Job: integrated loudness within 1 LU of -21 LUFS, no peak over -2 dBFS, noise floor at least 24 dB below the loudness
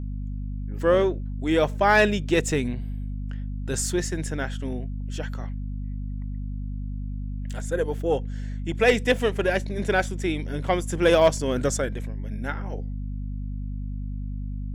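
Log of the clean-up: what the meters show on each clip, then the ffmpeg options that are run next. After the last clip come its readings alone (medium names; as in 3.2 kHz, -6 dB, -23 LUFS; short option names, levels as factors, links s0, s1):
hum 50 Hz; highest harmonic 250 Hz; hum level -28 dBFS; loudness -26.0 LUFS; peak level -8.0 dBFS; loudness target -21.0 LUFS
-> -af "bandreject=f=50:t=h:w=6,bandreject=f=100:t=h:w=6,bandreject=f=150:t=h:w=6,bandreject=f=200:t=h:w=6,bandreject=f=250:t=h:w=6"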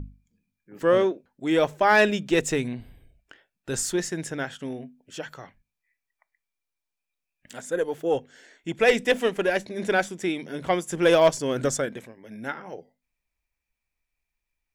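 hum not found; loudness -24.5 LUFS; peak level -9.0 dBFS; loudness target -21.0 LUFS
-> -af "volume=1.5"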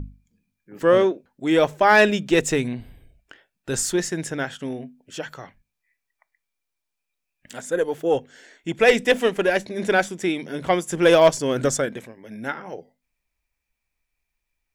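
loudness -21.0 LUFS; peak level -5.5 dBFS; noise floor -81 dBFS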